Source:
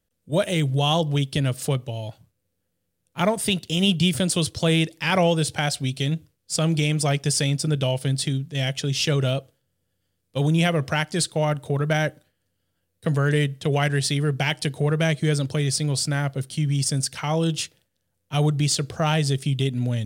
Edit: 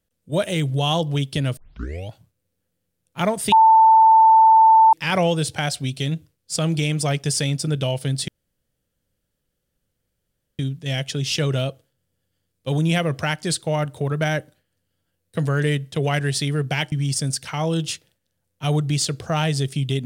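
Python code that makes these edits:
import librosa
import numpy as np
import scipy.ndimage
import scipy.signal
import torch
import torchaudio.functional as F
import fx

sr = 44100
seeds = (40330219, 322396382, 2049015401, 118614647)

y = fx.edit(x, sr, fx.tape_start(start_s=1.57, length_s=0.52),
    fx.bleep(start_s=3.52, length_s=1.41, hz=889.0, db=-8.5),
    fx.insert_room_tone(at_s=8.28, length_s=2.31),
    fx.cut(start_s=14.61, length_s=2.01), tone=tone)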